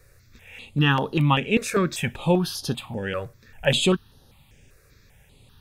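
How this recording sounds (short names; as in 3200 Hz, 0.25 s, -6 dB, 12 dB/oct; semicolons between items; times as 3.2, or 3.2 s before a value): notches that jump at a steady rate 5.1 Hz 860–7700 Hz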